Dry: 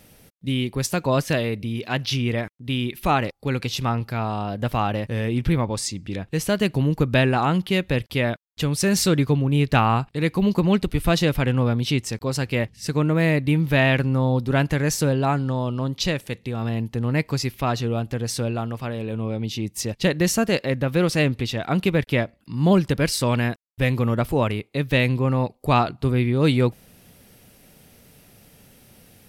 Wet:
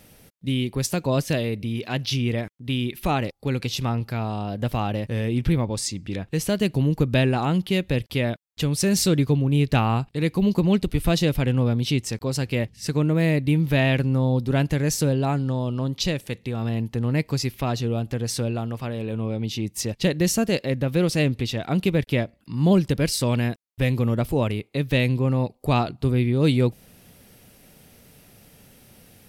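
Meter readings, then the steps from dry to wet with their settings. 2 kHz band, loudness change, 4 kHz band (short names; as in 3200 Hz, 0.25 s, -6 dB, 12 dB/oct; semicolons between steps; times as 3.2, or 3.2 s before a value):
-4.5 dB, -1.0 dB, -1.0 dB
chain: dynamic EQ 1300 Hz, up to -7 dB, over -36 dBFS, Q 0.78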